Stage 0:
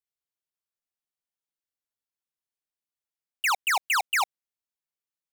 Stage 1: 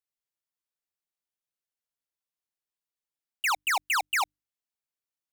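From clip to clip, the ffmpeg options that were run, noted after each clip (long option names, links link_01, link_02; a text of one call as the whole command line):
ffmpeg -i in.wav -af "bandreject=frequency=50:width_type=h:width=6,bandreject=frequency=100:width_type=h:width=6,bandreject=frequency=150:width_type=h:width=6,bandreject=frequency=200:width_type=h:width=6,bandreject=frequency=250:width_type=h:width=6,bandreject=frequency=300:width_type=h:width=6,volume=-2dB" out.wav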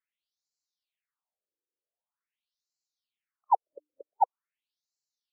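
ffmpeg -i in.wav -af "afftfilt=real='re*between(b*sr/1024,380*pow(5600/380,0.5+0.5*sin(2*PI*0.45*pts/sr))/1.41,380*pow(5600/380,0.5+0.5*sin(2*PI*0.45*pts/sr))*1.41)':imag='im*between(b*sr/1024,380*pow(5600/380,0.5+0.5*sin(2*PI*0.45*pts/sr))/1.41,380*pow(5600/380,0.5+0.5*sin(2*PI*0.45*pts/sr))*1.41)':win_size=1024:overlap=0.75,volume=8.5dB" out.wav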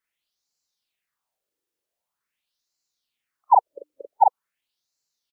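ffmpeg -i in.wav -filter_complex "[0:a]asplit=2[link_01][link_02];[link_02]adelay=41,volume=-2dB[link_03];[link_01][link_03]amix=inputs=2:normalize=0,volume=7dB" out.wav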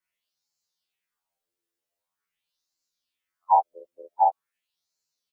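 ffmpeg -i in.wav -af "afftfilt=real='re*2*eq(mod(b,4),0)':imag='im*2*eq(mod(b,4),0)':win_size=2048:overlap=0.75" out.wav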